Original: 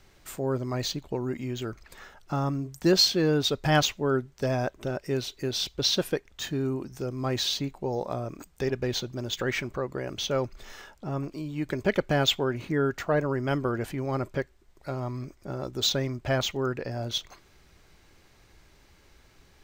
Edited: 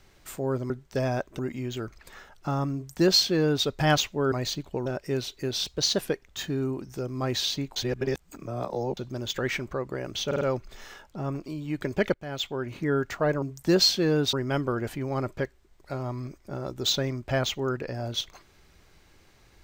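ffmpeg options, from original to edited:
-filter_complex "[0:a]asplit=15[s0][s1][s2][s3][s4][s5][s6][s7][s8][s9][s10][s11][s12][s13][s14];[s0]atrim=end=0.702[s15];[s1]atrim=start=4.168:end=4.862[s16];[s2]atrim=start=1.238:end=4.172[s17];[s3]atrim=start=0.698:end=1.242[s18];[s4]atrim=start=4.858:end=5.644[s19];[s5]atrim=start=5.64:end=6.04,asetpts=PTS-STARTPTS,asetrate=47628,aresample=44100,atrim=end_sample=16333,asetpts=PTS-STARTPTS[s20];[s6]atrim=start=6.036:end=7.792[s21];[s7]atrim=start=7.788:end=9.002,asetpts=PTS-STARTPTS,areverse[s22];[s8]atrim=start=8.998:end=10.342[s23];[s9]atrim=start=10.288:end=10.342[s24];[s10]atrim=start=10.288:end=10.342[s25];[s11]atrim=start=10.288:end=12.02,asetpts=PTS-STARTPTS,afade=t=out:st=1.728:d=0.004:c=hsin:silence=0.0794328[s26];[s12]atrim=start=12.02:end=13.302,asetpts=PTS-STARTPTS,afade=t=in:d=0.76:silence=0.0794328[s27];[s13]atrim=start=2.588:end=3.502[s28];[s14]atrim=start=13.298[s29];[s15][s16]acrossfade=d=0.004:c1=hsin:c2=hsin[s30];[s30][s17]acrossfade=d=0.004:c1=hsin:c2=hsin[s31];[s31][s18]acrossfade=d=0.004:c1=hsin:c2=hsin[s32];[s32][s19]acrossfade=d=0.004:c1=hsin:c2=hsin[s33];[s33][s20]acrossfade=d=0.004:c1=hsin:c2=hsin[s34];[s34][s21]acrossfade=d=0.004:c1=hsin:c2=hsin[s35];[s35][s22]acrossfade=d=0.004:c1=hsin:c2=hsin[s36];[s36][s23]acrossfade=d=0.004:c1=hsin:c2=hsin[s37];[s37][s24]acrossfade=d=0.004:c1=hsin:c2=hsin[s38];[s38][s25]acrossfade=d=0.004:c1=hsin:c2=hsin[s39];[s26][s27]concat=n=2:v=0:a=1[s40];[s39][s40]acrossfade=d=0.004:c1=hsin:c2=hsin[s41];[s41][s28]acrossfade=d=0.004:c1=hsin:c2=hsin[s42];[s42][s29]acrossfade=d=0.004:c1=hsin:c2=hsin"

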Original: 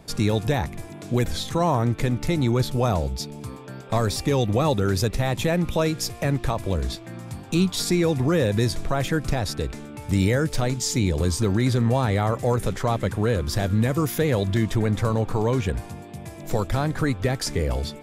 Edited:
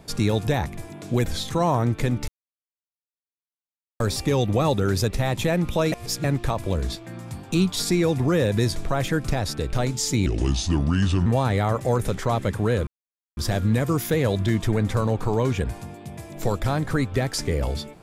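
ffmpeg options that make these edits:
-filter_complex "[0:a]asplit=9[s0][s1][s2][s3][s4][s5][s6][s7][s8];[s0]atrim=end=2.28,asetpts=PTS-STARTPTS,afade=t=out:st=2.276:d=0.004:c=hsin[s9];[s1]atrim=start=2.28:end=4,asetpts=PTS-STARTPTS,volume=0[s10];[s2]atrim=start=4:end=5.922,asetpts=PTS-STARTPTS,afade=t=in:d=0.004:c=hsin[s11];[s3]atrim=start=5.918:end=6.242,asetpts=PTS-STARTPTS,areverse[s12];[s4]atrim=start=6.238:end=9.732[s13];[s5]atrim=start=10.558:end=11.094[s14];[s6]atrim=start=11.09:end=11.84,asetpts=PTS-STARTPTS,asetrate=33075,aresample=44100[s15];[s7]atrim=start=11.836:end=13.45,asetpts=PTS-STARTPTS,afade=t=out:st=1.61:d=0.004:c=hsin,apad=pad_dur=0.5[s16];[s8]atrim=start=13.45,asetpts=PTS-STARTPTS,afade=t=in:d=0.004:c=hsin[s17];[s9][s10][s11]concat=n=3:v=0:a=1[s18];[s18][s12]acrossfade=d=0.004:c1=hsin:c2=hsin[s19];[s19][s13]acrossfade=d=0.004:c1=hsin:c2=hsin[s20];[s20][s14]acrossfade=d=0.004:c1=hsin:c2=hsin[s21];[s21][s15]acrossfade=d=0.004:c1=hsin:c2=hsin[s22];[s16][s17]concat=n=2:v=0:a=1[s23];[s22][s23]acrossfade=d=0.004:c1=hsin:c2=hsin"

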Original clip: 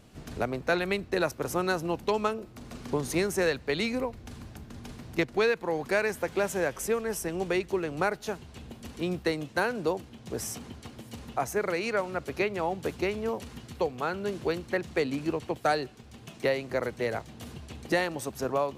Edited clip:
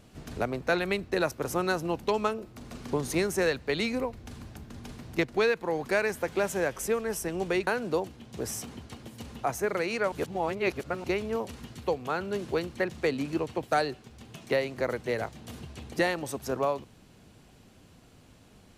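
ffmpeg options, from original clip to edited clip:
-filter_complex "[0:a]asplit=4[s0][s1][s2][s3];[s0]atrim=end=7.672[s4];[s1]atrim=start=9.598:end=12.052[s5];[s2]atrim=start=12.048:end=12.972,asetpts=PTS-STARTPTS,areverse[s6];[s3]atrim=start=12.968[s7];[s4][s5]acrossfade=d=0.004:c1=hsin:c2=hsin[s8];[s8][s6]acrossfade=d=0.004:c1=hsin:c2=hsin[s9];[s9][s7]acrossfade=d=0.004:c1=hsin:c2=hsin"

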